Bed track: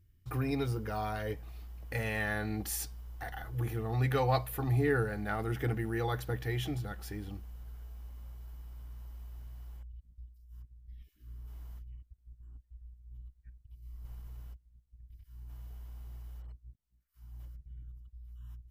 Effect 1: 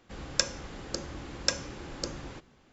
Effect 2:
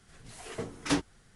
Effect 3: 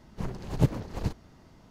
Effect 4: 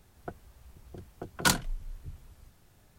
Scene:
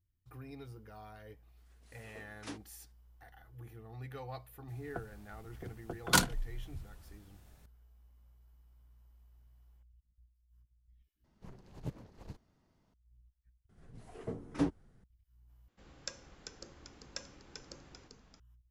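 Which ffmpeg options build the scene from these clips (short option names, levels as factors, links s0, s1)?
-filter_complex "[2:a]asplit=2[s0][s1];[0:a]volume=0.158[s2];[s0]highpass=230[s3];[s1]tiltshelf=f=1200:g=9.5[s4];[1:a]asplit=6[s5][s6][s7][s8][s9][s10];[s6]adelay=392,afreqshift=-90,volume=0.473[s11];[s7]adelay=784,afreqshift=-180,volume=0.204[s12];[s8]adelay=1176,afreqshift=-270,volume=0.0871[s13];[s9]adelay=1568,afreqshift=-360,volume=0.0376[s14];[s10]adelay=1960,afreqshift=-450,volume=0.0162[s15];[s5][s11][s12][s13][s14][s15]amix=inputs=6:normalize=0[s16];[s2]asplit=4[s17][s18][s19][s20];[s17]atrim=end=11.244[s21];[3:a]atrim=end=1.7,asetpts=PTS-STARTPTS,volume=0.126[s22];[s18]atrim=start=12.936:end=13.694[s23];[s4]atrim=end=1.35,asetpts=PTS-STARTPTS,volume=0.299[s24];[s19]atrim=start=15.036:end=15.684[s25];[s16]atrim=end=2.72,asetpts=PTS-STARTPTS,volume=0.15[s26];[s20]atrim=start=18.396[s27];[s3]atrim=end=1.35,asetpts=PTS-STARTPTS,volume=0.15,afade=t=in:d=0.004:c=hsin,afade=t=out:st=1.346:d=0.004:c=hsin,adelay=1570[s28];[4:a]atrim=end=2.98,asetpts=PTS-STARTPTS,volume=0.841,afade=t=in:d=0.004:c=hsin,afade=t=out:st=2.976:d=0.004:c=hsin,adelay=4680[s29];[s21][s22]acrossfade=d=0.004:c1=hsin:c2=hsin[s30];[s30][s23]acrossfade=d=0.004:c1=hsin:c2=hsin[s31];[s31][s24]acrossfade=d=0.004:c1=hsin:c2=hsin[s32];[s32][s25]acrossfade=d=0.004:c1=hsin:c2=hsin[s33];[s33][s26]acrossfade=d=0.004:c1=hsin:c2=hsin[s34];[s34][s27]acrossfade=d=0.004:c1=hsin:c2=hsin[s35];[s35][s28][s29]amix=inputs=3:normalize=0"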